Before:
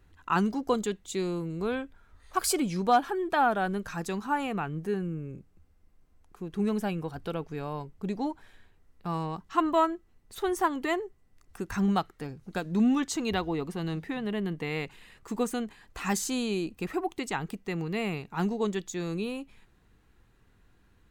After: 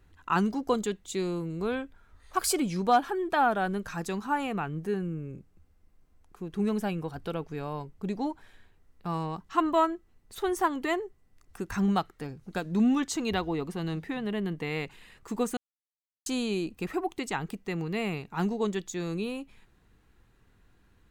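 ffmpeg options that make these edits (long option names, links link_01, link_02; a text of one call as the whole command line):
ffmpeg -i in.wav -filter_complex "[0:a]asplit=3[link_01][link_02][link_03];[link_01]atrim=end=15.57,asetpts=PTS-STARTPTS,afade=type=out:start_time=15.566:duration=0.004:curve=hsin[link_04];[link_02]atrim=start=15.57:end=16.26,asetpts=PTS-STARTPTS,volume=0[link_05];[link_03]atrim=start=16.26,asetpts=PTS-STARTPTS,afade=type=in:duration=0.004:curve=hsin[link_06];[link_04][link_05][link_06]concat=n=3:v=0:a=1" out.wav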